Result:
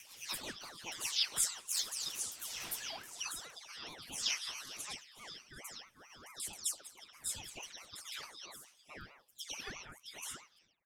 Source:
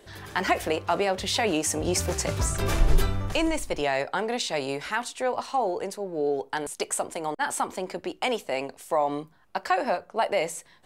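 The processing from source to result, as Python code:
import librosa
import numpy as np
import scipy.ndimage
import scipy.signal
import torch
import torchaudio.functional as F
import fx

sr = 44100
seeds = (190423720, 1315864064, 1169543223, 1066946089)

y = fx.spec_delay(x, sr, highs='early', ms=268)
y = fx.peak_eq(y, sr, hz=4300.0, db=13.5, octaves=0.26)
y = fx.rotary_switch(y, sr, hz=5.5, then_hz=0.6, switch_at_s=1.56)
y = F.preemphasis(torch.from_numpy(y), 0.97).numpy()
y = fx.ring_lfo(y, sr, carrier_hz=1200.0, swing_pct=45, hz=4.6)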